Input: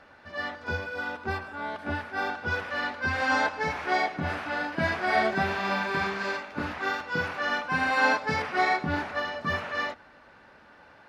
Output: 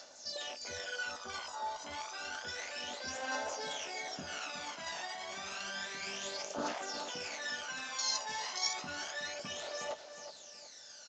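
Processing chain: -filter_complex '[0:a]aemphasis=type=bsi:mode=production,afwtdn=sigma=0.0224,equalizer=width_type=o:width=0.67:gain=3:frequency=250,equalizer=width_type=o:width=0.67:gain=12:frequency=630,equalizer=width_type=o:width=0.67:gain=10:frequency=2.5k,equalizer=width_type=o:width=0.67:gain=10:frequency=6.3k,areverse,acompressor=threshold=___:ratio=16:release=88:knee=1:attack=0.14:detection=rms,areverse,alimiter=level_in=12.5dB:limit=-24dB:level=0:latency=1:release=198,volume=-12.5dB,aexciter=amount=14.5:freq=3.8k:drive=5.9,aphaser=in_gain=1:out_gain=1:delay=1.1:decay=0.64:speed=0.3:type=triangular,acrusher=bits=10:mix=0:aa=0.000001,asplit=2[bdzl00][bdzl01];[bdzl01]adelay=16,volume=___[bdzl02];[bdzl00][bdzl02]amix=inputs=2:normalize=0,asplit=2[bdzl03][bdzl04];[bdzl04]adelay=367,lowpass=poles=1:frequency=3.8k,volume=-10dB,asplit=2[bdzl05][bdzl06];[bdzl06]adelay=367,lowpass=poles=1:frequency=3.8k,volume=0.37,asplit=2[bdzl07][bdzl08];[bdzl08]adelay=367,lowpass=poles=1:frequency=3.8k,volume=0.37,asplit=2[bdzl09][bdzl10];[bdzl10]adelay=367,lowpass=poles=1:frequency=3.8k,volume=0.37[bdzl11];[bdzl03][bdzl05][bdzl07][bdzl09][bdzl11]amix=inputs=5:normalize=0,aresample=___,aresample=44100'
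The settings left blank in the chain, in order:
-27dB, -11dB, 16000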